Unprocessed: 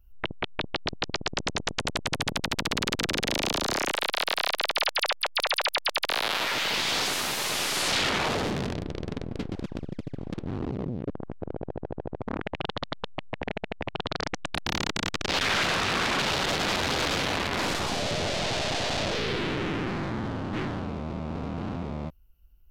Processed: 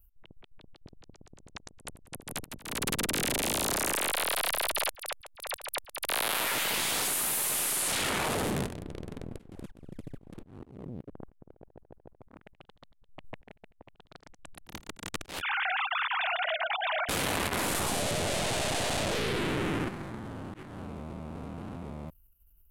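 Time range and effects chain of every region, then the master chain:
2.14–4.89 s: delay 165 ms -4 dB + three bands compressed up and down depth 40%
15.41–17.09 s: formants replaced by sine waves + high-pass 660 Hz
whole clip: resonant high shelf 7.3 kHz +12.5 dB, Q 1.5; level held to a coarse grid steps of 10 dB; slow attack 270 ms

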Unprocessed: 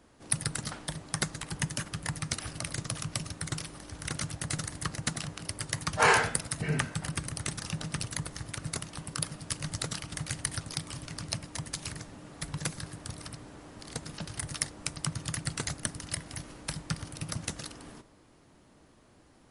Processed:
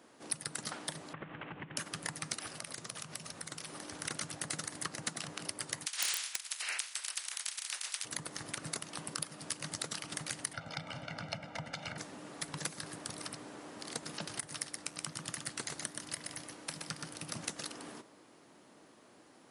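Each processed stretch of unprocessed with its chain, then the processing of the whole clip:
1.13–1.77 s: CVSD coder 16 kbps + compression 10:1, threshold -40 dBFS + bass shelf 110 Hz +9 dB
2.47–3.72 s: hum notches 50/100/150/200/250/300/350/400 Hz + compression 5:1, threshold -40 dBFS
5.85–8.04 s: spectral peaks clipped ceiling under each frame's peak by 29 dB + Bessel high-pass 2.1 kHz + integer overflow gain 11.5 dB
10.53–11.98 s: low-pass 2.7 kHz + comb 1.4 ms, depth 80%
14.40–17.35 s: flange 1.1 Hz, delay 4.1 ms, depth 9.3 ms, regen +89% + delay 124 ms -5.5 dB
whole clip: high-pass 240 Hz 12 dB/octave; compression 3:1, threshold -38 dBFS; trim +2 dB

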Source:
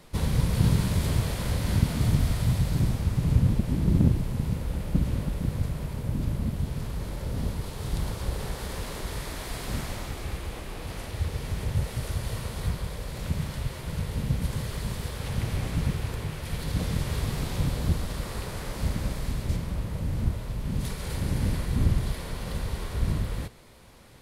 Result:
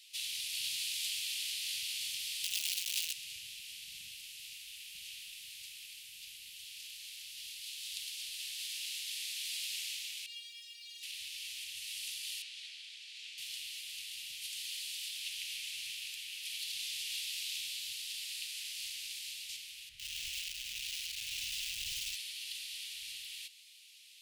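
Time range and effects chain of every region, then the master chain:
2.44–3.13 s: compression 4:1, threshold -23 dBFS + companded quantiser 2-bit
10.26–11.03 s: peaking EQ 3.7 kHz +13 dB 2.3 oct + feedback comb 470 Hz, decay 0.27 s, mix 100% + modulation noise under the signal 22 dB
12.42–13.38 s: band-pass 580–7100 Hz + treble shelf 3.8 kHz -8 dB
19.89–22.16 s: tilt EQ -3.5 dB/octave + bit-crushed delay 102 ms, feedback 35%, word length 5-bit, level -5.5 dB
whole clip: elliptic high-pass 2.7 kHz, stop band 60 dB; treble shelf 4.2 kHz -9.5 dB; trim +9 dB

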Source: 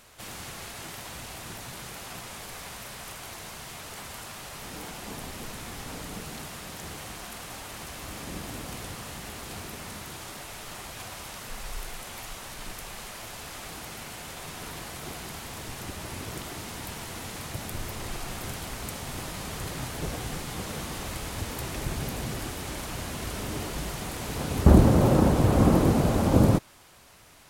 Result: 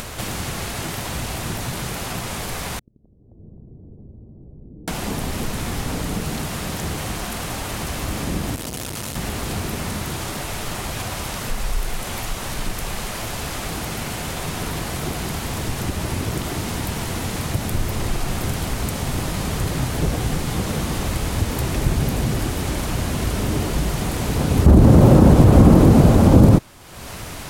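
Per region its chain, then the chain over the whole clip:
2.79–4.88 s: inverted gate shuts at -37 dBFS, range -38 dB + inverse Chebyshev low-pass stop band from 2.3 kHz, stop band 80 dB + two-band feedback delay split 550 Hz, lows 84 ms, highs 262 ms, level -8.5 dB
8.55–9.16 s: treble shelf 2.9 kHz +9 dB + comb of notches 390 Hz + transformer saturation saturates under 2.2 kHz
whole clip: upward compressor, threshold -29 dBFS; bass shelf 400 Hz +7.5 dB; loudness maximiser +7 dB; trim -1 dB

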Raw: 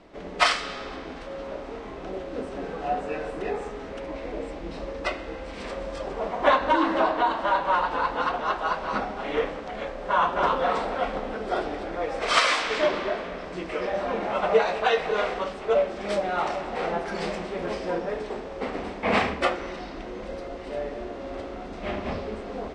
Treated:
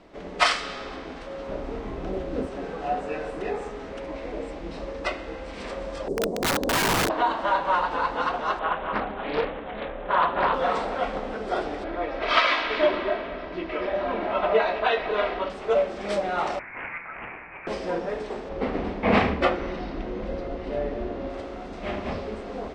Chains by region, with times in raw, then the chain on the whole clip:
1.49–2.47 s: median filter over 3 samples + bass shelf 280 Hz +10 dB
6.08–7.10 s: FFT filter 120 Hz 0 dB, 170 Hz +7 dB, 430 Hz +9 dB, 1.3 kHz -23 dB, 2.7 kHz -28 dB, 4.6 kHz -10 dB, 9 kHz +5 dB + integer overflow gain 18 dB
8.59–10.54 s: brick-wall FIR low-pass 3.7 kHz + doubling 28 ms -11 dB + loudspeaker Doppler distortion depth 0.42 ms
11.84–15.50 s: low-pass 4.1 kHz 24 dB/octave + comb 3.1 ms, depth 43%
16.59–17.67 s: high-pass 1.1 kHz + frequency inversion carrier 2.9 kHz + loudspeaker Doppler distortion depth 0.24 ms
18.49–21.30 s: low-pass 4.7 kHz + bass shelf 380 Hz +8 dB
whole clip: none

